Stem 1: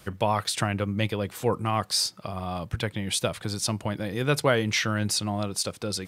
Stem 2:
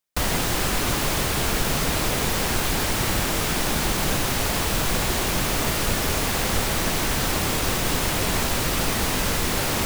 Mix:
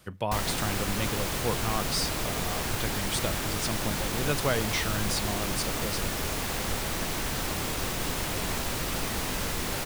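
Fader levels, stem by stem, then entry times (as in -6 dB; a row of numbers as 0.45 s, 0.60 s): -5.5 dB, -7.5 dB; 0.00 s, 0.15 s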